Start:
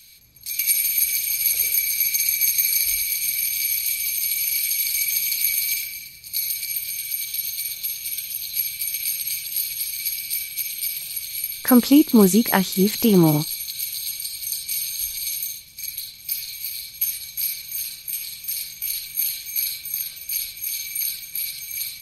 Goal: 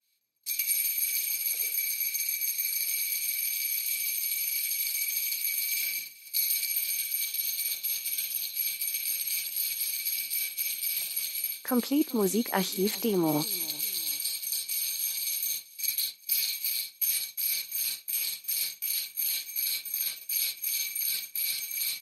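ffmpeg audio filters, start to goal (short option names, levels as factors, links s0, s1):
-af "highpass=300,agate=range=0.0224:threshold=0.0355:ratio=3:detection=peak,areverse,acompressor=threshold=0.0224:ratio=6,areverse,aecho=1:1:388|776:0.075|0.0255,adynamicequalizer=threshold=0.00178:dfrequency=1600:dqfactor=0.7:tfrequency=1600:tqfactor=0.7:attack=5:release=100:ratio=0.375:range=2:mode=cutabove:tftype=highshelf,volume=2.66"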